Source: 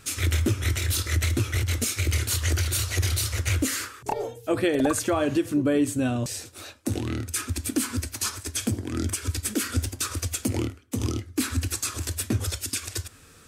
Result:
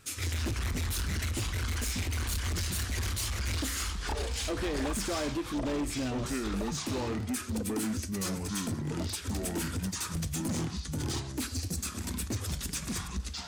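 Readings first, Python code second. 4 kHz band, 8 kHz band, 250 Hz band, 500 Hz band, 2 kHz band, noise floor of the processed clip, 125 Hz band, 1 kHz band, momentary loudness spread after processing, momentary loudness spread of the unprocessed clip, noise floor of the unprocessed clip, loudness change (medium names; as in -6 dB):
-4.5 dB, -7.0 dB, -6.5 dB, -7.5 dB, -6.0 dB, -41 dBFS, -7.0 dB, -5.0 dB, 3 LU, 7 LU, -51 dBFS, -6.5 dB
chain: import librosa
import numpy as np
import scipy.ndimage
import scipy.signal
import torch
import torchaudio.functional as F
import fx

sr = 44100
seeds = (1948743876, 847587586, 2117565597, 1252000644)

y = fx.echo_pitch(x, sr, ms=131, semitones=-5, count=2, db_per_echo=-3.0)
y = np.clip(10.0 ** (21.5 / 20.0) * y, -1.0, 1.0) / 10.0 ** (21.5 / 20.0)
y = fx.spec_box(y, sr, start_s=11.46, length_s=0.32, low_hz=850.0, high_hz=3900.0, gain_db=-9)
y = y * 10.0 ** (-7.0 / 20.0)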